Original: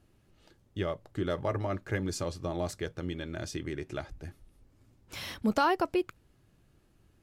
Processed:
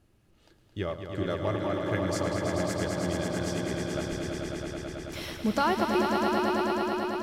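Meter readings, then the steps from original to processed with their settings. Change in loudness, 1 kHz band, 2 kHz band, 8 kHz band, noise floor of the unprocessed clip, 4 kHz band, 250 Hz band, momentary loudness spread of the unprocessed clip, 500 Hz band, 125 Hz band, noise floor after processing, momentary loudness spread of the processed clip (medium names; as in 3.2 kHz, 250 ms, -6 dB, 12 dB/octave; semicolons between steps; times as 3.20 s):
+3.5 dB, +5.0 dB, +5.0 dB, +5.5 dB, -67 dBFS, +5.5 dB, +5.5 dB, 14 LU, +5.0 dB, +3.5 dB, -63 dBFS, 10 LU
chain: echo with a slow build-up 109 ms, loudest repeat 5, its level -6 dB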